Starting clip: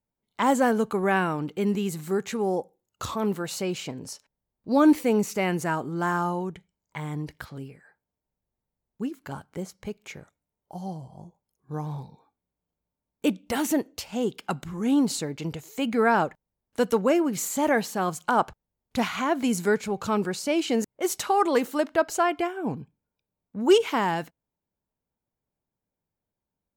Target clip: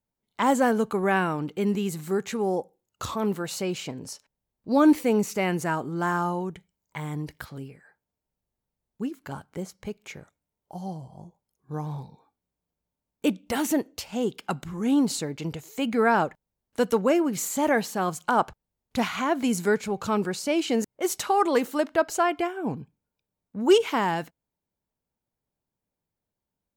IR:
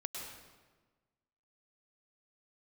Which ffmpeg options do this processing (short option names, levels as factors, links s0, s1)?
-filter_complex "[0:a]asettb=1/sr,asplit=3[s0][s1][s2];[s0]atrim=end=6.504[s3];[s1]atrim=start=6.5:end=7.6,asetpts=PTS-STARTPTS,afade=t=in:d=0.004:c=qsin,afade=t=out:st=1.096:d=0.004:c=qsin,highshelf=f=9700:g=6.5[s4];[s2]atrim=start=7.596[s5];[s3][s4]acrossfade=d=0.004:c1=hsin:c2=qsin[s6];[s6][s5]acrossfade=d=0.004:c1=qsin:c2=hsin"